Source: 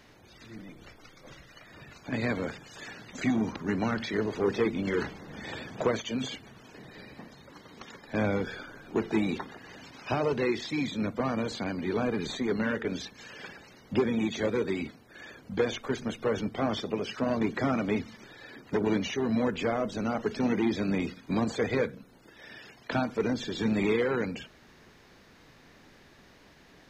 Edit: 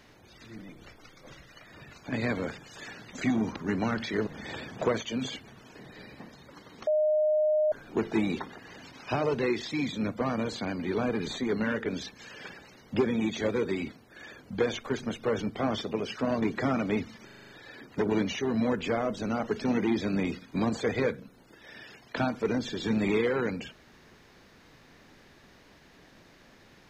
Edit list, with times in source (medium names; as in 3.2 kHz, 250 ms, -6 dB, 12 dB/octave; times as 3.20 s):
4.27–5.26 s: delete
7.86–8.71 s: bleep 613 Hz -21.5 dBFS
18.24 s: stutter 0.04 s, 7 plays